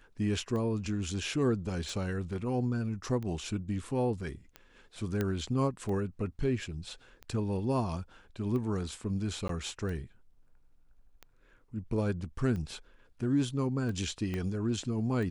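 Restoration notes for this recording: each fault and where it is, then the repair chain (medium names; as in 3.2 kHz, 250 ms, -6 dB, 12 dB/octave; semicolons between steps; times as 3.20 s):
tick 45 rpm -28 dBFS
5.21 s: pop -18 dBFS
9.48–9.49 s: dropout 13 ms
14.34 s: pop -23 dBFS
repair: de-click; interpolate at 9.48 s, 13 ms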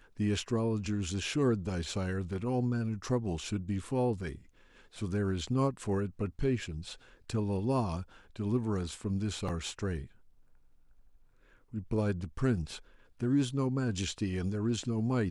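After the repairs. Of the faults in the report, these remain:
14.34 s: pop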